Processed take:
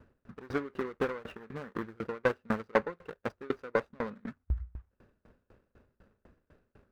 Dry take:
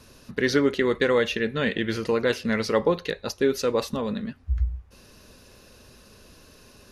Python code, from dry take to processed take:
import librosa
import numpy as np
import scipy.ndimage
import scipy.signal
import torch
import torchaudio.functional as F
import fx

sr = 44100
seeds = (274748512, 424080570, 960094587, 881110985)

y = scipy.ndimage.median_filter(x, 41, mode='constant')
y = fx.high_shelf(y, sr, hz=4900.0, db=-6.0)
y = fx.transient(y, sr, attack_db=2, sustain_db=-3, at=(2.02, 4.29))
y = fx.peak_eq(y, sr, hz=1400.0, db=12.5, octaves=1.4)
y = fx.tremolo_decay(y, sr, direction='decaying', hz=4.0, depth_db=30)
y = F.gain(torch.from_numpy(y), -3.0).numpy()